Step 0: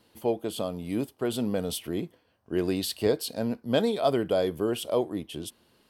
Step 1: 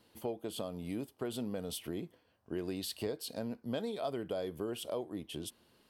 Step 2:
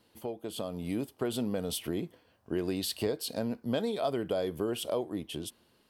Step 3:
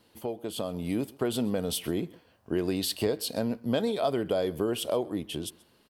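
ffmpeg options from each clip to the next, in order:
ffmpeg -i in.wav -af "acompressor=threshold=-33dB:ratio=3,volume=-3.5dB" out.wav
ffmpeg -i in.wav -af "dynaudnorm=framelen=190:gausssize=7:maxgain=6dB" out.wav
ffmpeg -i in.wav -af "aecho=1:1:131:0.0668,volume=3.5dB" out.wav

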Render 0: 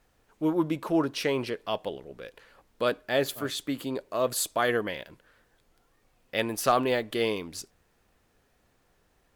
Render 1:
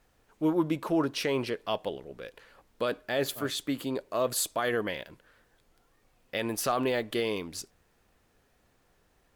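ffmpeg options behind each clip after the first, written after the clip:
ffmpeg -i in.wav -af "alimiter=limit=-17.5dB:level=0:latency=1:release=53" out.wav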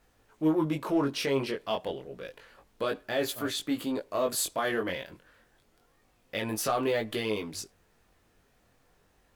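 ffmpeg -i in.wav -filter_complex "[0:a]flanger=delay=18:depth=4.6:speed=0.29,asplit=2[link_01][link_02];[link_02]asoftclip=type=tanh:threshold=-35.5dB,volume=-8.5dB[link_03];[link_01][link_03]amix=inputs=2:normalize=0,volume=1.5dB" out.wav

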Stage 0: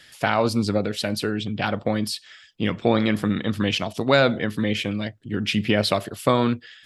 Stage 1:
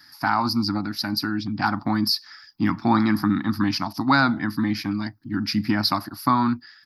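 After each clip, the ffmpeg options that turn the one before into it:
ffmpeg -i in.wav -af "lowshelf=frequency=60:gain=-10,dynaudnorm=framelen=630:gausssize=5:maxgain=11.5dB,firequalizer=gain_entry='entry(190,0);entry(300,7);entry(450,-28);entry(830,7);entry(1300,5);entry(3100,-17);entry(4800,11);entry(7800,-21);entry(12000,9)':delay=0.05:min_phase=1,volume=-2dB" out.wav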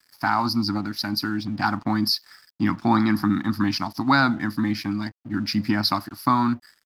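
ffmpeg -i in.wav -af "aeval=exprs='sgn(val(0))*max(abs(val(0))-0.00376,0)':channel_layout=same" out.wav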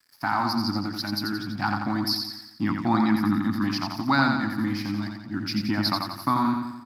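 ffmpeg -i in.wav -af "aecho=1:1:87|174|261|348|435|522|609:0.562|0.298|0.158|0.0837|0.0444|0.0235|0.0125,volume=-4dB" out.wav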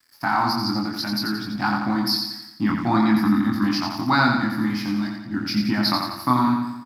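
ffmpeg -i in.wav -filter_complex "[0:a]asplit=2[link_01][link_02];[link_02]adelay=24,volume=-3dB[link_03];[link_01][link_03]amix=inputs=2:normalize=0,volume=2dB" out.wav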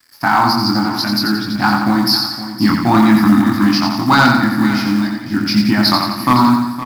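ffmpeg -i in.wav -af "asoftclip=type=hard:threshold=-12.5dB,acrusher=bits=7:mode=log:mix=0:aa=0.000001,aecho=1:1:514:0.224,volume=8.5dB" out.wav

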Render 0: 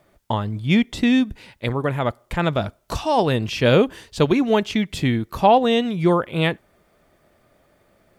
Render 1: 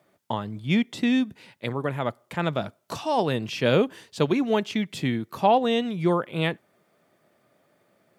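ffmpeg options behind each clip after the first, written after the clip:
ffmpeg -i in.wav -af "highpass=frequency=120:width=0.5412,highpass=frequency=120:width=1.3066,volume=-5dB" out.wav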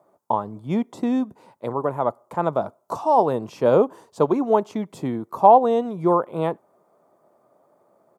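ffmpeg -i in.wav -af "firequalizer=gain_entry='entry(100,0);entry(400,9);entry(1000,14);entry(1700,-6);entry(2800,-11);entry(6800,0)':delay=0.05:min_phase=1,volume=-4.5dB" out.wav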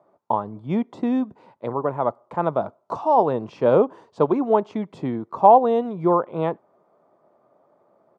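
ffmpeg -i in.wav -af "lowpass=3600" out.wav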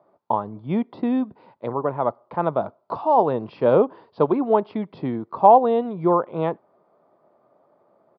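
ffmpeg -i in.wav -af "aresample=11025,aresample=44100" out.wav

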